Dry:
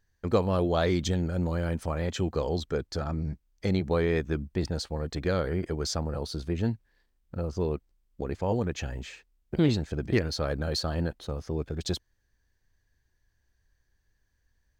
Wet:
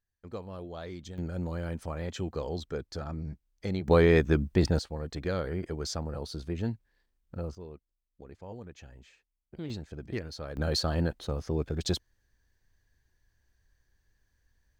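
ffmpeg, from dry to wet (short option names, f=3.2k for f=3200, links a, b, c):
-af "asetnsamples=n=441:p=0,asendcmd='1.18 volume volume -5.5dB;3.88 volume volume 5dB;4.79 volume volume -4dB;7.55 volume volume -16dB;9.7 volume volume -10dB;10.57 volume volume 1dB',volume=-15.5dB"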